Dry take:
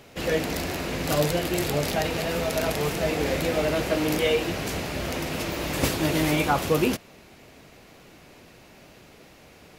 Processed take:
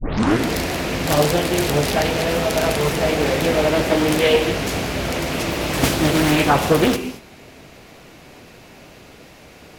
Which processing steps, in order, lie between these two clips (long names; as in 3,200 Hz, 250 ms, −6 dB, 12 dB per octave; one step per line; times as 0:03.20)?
turntable start at the beginning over 0.48 s
reverb whose tail is shaped and stops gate 250 ms flat, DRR 9 dB
highs frequency-modulated by the lows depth 0.67 ms
level +6.5 dB